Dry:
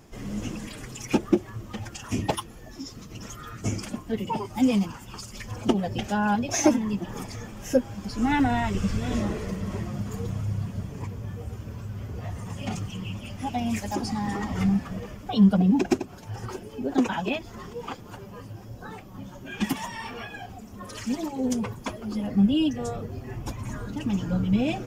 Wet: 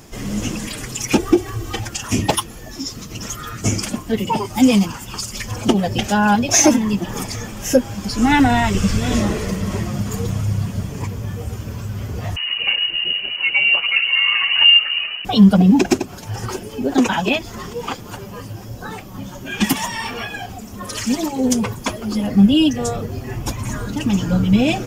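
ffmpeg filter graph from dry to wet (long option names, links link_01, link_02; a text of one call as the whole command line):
ffmpeg -i in.wav -filter_complex "[0:a]asettb=1/sr,asplit=3[link_01][link_02][link_03];[link_01]atrim=end=1.184[link_04];[link_02]atrim=start=1.18:end=1.81,asetpts=PTS-STARTPTS,afade=type=in:duration=0.004:curve=qsin,afade=type=out:start_time=0.626:duration=0.004:curve=qsin,bandreject=frequency=1200:width=25,aecho=1:1:2.6:0.99,atrim=end_sample=27783,acompressor=mode=upward:threshold=-32dB:ratio=2.5:attack=3.2:release=140:knee=2.83:detection=peak[link_05];[link_03]atrim=start=1.806[link_06];[link_04][link_05]acrossfade=duration=0.004:curve1=hsin:curve2=qsin[link_07];[link_07][link_06]acrossfade=duration=0.004:curve1=qsin:curve2=hsin,asettb=1/sr,asplit=3[link_08][link_09][link_10];[link_08]atrim=end=12.364[link_11];[link_09]atrim=start=12.36:end=15.25,asetpts=PTS-STARTPTS,afade=type=in:duration=0.004:curve=qsin,afade=type=out:start_time=2.886:duration=0.004:curve=qsin,lowpass=frequency=2600:width_type=q:width=0.5098,lowpass=frequency=2600:width_type=q:width=0.6013,lowpass=frequency=2600:width_type=q:width=0.9,lowpass=frequency=2600:width_type=q:width=2.563,afreqshift=-3000,aecho=1:1:137:0.133,atrim=end_sample=127449[link_12];[link_10]atrim=start=15.246[link_13];[link_11][link_12]acrossfade=duration=0.004:curve1=hsin:curve2=qsin[link_14];[link_14][link_13]acrossfade=duration=0.004:curve1=qsin:curve2=hsin,highshelf=frequency=2800:gain=7,alimiter=level_in=9.5dB:limit=-1dB:release=50:level=0:latency=1,volume=-1dB" out.wav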